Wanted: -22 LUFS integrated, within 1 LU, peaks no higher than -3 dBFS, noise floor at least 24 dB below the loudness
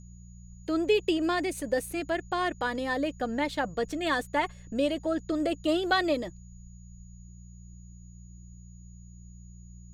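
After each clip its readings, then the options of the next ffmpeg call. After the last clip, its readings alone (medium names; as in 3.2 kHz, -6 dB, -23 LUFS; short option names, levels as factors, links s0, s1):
hum 60 Hz; highest harmonic 180 Hz; hum level -45 dBFS; steady tone 6.8 kHz; tone level -60 dBFS; loudness -29.0 LUFS; peak level -12.0 dBFS; loudness target -22.0 LUFS
-> -af "bandreject=f=60:t=h:w=4,bandreject=f=120:t=h:w=4,bandreject=f=180:t=h:w=4"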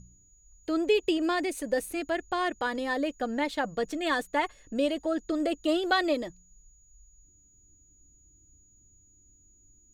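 hum not found; steady tone 6.8 kHz; tone level -60 dBFS
-> -af "bandreject=f=6800:w=30"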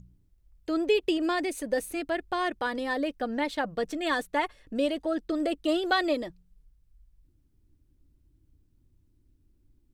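steady tone not found; loudness -29.0 LUFS; peak level -12.5 dBFS; loudness target -22.0 LUFS
-> -af "volume=2.24"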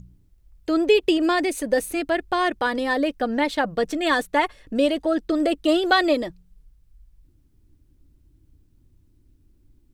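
loudness -22.0 LUFS; peak level -5.5 dBFS; noise floor -60 dBFS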